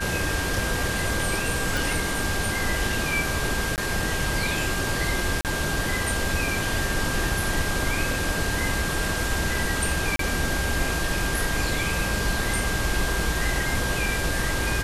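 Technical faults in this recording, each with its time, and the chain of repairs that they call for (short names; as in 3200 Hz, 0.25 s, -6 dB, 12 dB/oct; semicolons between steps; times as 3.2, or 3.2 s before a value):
tone 1600 Hz -30 dBFS
1.77 pop
3.76–3.78 gap 18 ms
5.41–5.45 gap 38 ms
10.16–10.19 gap 33 ms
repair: de-click; notch 1600 Hz, Q 30; interpolate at 3.76, 18 ms; interpolate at 5.41, 38 ms; interpolate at 10.16, 33 ms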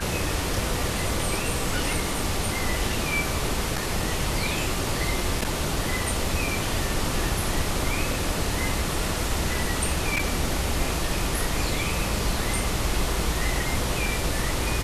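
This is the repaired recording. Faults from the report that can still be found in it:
none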